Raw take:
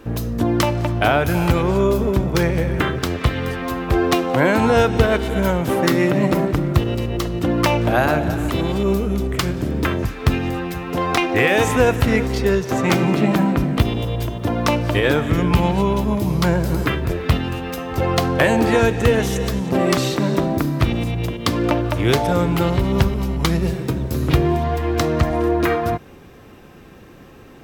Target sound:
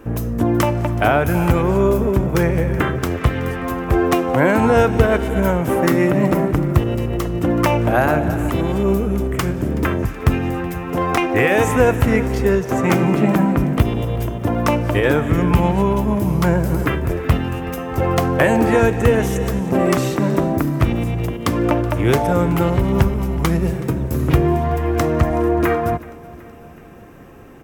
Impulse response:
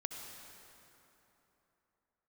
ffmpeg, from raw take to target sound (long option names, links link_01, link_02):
-filter_complex "[0:a]equalizer=frequency=4100:width=1.4:gain=-10.5,asplit=2[link_01][link_02];[link_02]aecho=0:1:375|750|1125|1500:0.0891|0.0508|0.029|0.0165[link_03];[link_01][link_03]amix=inputs=2:normalize=0,volume=1.5dB"